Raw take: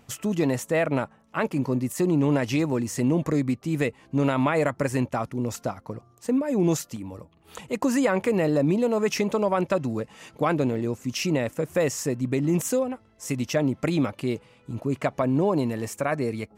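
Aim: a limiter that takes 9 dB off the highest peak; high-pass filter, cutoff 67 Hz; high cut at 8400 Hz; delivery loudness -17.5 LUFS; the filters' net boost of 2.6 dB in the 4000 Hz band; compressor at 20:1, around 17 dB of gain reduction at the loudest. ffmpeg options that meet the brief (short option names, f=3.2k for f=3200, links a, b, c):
-af "highpass=67,lowpass=8.4k,equalizer=f=4k:t=o:g=4,acompressor=threshold=-35dB:ratio=20,volume=24dB,alimiter=limit=-6.5dB:level=0:latency=1"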